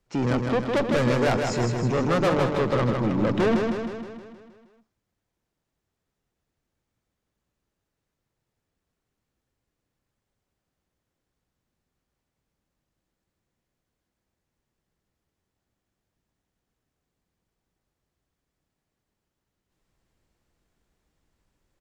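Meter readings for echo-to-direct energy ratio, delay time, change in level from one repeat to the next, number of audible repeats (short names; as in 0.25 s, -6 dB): -3.0 dB, 0.157 s, -5.0 dB, 7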